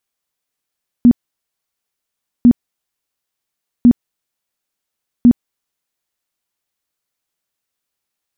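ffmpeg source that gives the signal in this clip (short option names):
-f lavfi -i "aevalsrc='0.708*sin(2*PI*241*mod(t,1.4))*lt(mod(t,1.4),15/241)':d=5.6:s=44100"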